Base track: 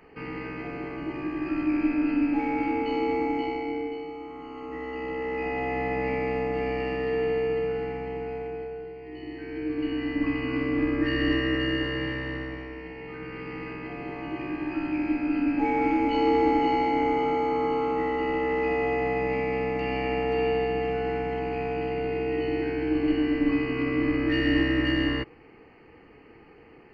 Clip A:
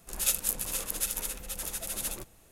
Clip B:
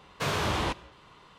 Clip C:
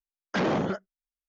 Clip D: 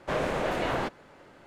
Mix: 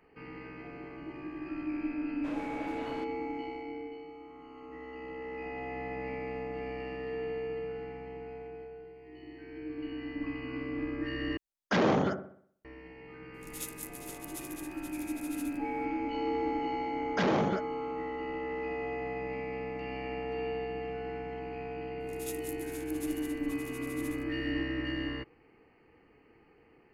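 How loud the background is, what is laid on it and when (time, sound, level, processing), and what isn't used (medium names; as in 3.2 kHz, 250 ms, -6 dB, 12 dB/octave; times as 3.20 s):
base track -10 dB
2.16 s: add D -15.5 dB
11.37 s: replace with C -0.5 dB + feedback echo behind a low-pass 62 ms, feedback 47%, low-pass 1.1 kHz, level -7 dB
13.34 s: add A -14 dB
16.83 s: add C -2.5 dB
22.00 s: add A -16.5 dB
not used: B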